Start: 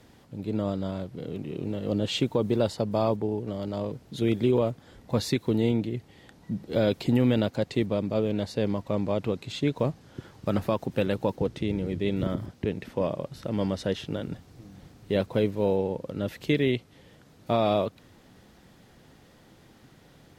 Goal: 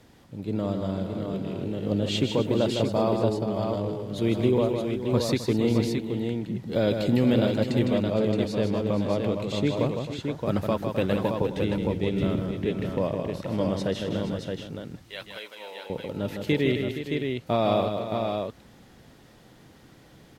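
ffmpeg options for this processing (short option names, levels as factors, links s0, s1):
-filter_complex "[0:a]asettb=1/sr,asplit=3[s0][s1][s2];[s0]atrim=end=14.754[s3];[s1]atrim=start=14.75:end=15.9,asetpts=PTS-STARTPTS,afade=t=in:d=0.004:c=qsin,afade=t=out:st=1.146:d=0.004:c=qsin,highpass=1400[s4];[s2]atrim=start=15.896[s5];[s3][s4]acrossfade=d=0.004:c1=hsin:c2=qsin[s6];[s6][s5]acrossfade=d=0.004:c1=qsin:c2=hsin,asplit=2[s7][s8];[s8]aecho=0:1:157|263|470|621:0.501|0.2|0.282|0.562[s9];[s7][s9]amix=inputs=2:normalize=0"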